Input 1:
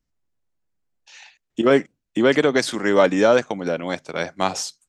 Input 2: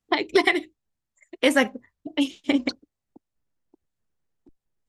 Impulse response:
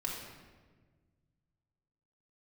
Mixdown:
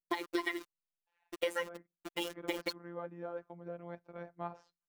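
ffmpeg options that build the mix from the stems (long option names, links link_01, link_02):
-filter_complex "[0:a]lowpass=1200,volume=-15.5dB,afade=type=in:start_time=3.4:duration=0.38:silence=0.446684[link_01];[1:a]highpass=frequency=130:poles=1,aecho=1:1:2.1:0.52,acrusher=bits=5:mix=0:aa=0.000001,volume=-4dB[link_02];[link_01][link_02]amix=inputs=2:normalize=0,adynamicequalizer=threshold=0.00708:dfrequency=1200:dqfactor=1.7:tfrequency=1200:tqfactor=1.7:attack=5:release=100:ratio=0.375:range=3:mode=boostabove:tftype=bell,afftfilt=real='hypot(re,im)*cos(PI*b)':imag='0':win_size=1024:overlap=0.75,acompressor=threshold=-31dB:ratio=8"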